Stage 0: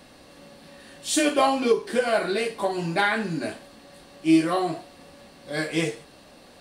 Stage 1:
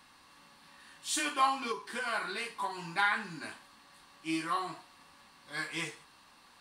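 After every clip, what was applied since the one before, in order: resonant low shelf 770 Hz -8 dB, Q 3; gain -7.5 dB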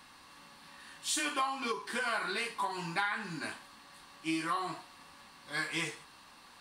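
compressor 6:1, threshold -33 dBFS, peak gain reduction 11.5 dB; gain +3.5 dB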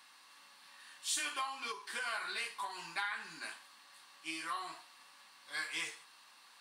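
HPF 1400 Hz 6 dB/oct; gain -2 dB

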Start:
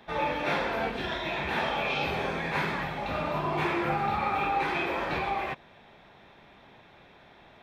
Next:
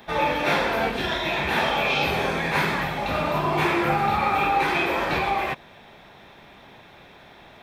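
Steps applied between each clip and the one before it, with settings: high shelf 7000 Hz +11 dB; gain +6 dB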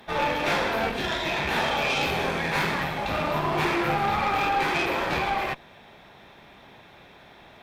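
tube stage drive 19 dB, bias 0.65; gain +1.5 dB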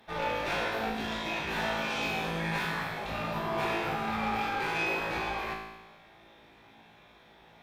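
resonator 55 Hz, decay 1.1 s, harmonics all, mix 90%; gain +4.5 dB

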